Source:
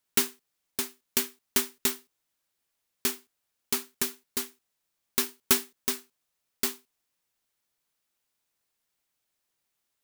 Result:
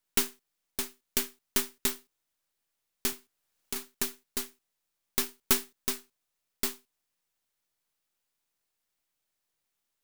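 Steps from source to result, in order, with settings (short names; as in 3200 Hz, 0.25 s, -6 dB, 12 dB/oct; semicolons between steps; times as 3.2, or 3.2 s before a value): half-wave gain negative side -7 dB; 3.12–3.76 three-band squash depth 40%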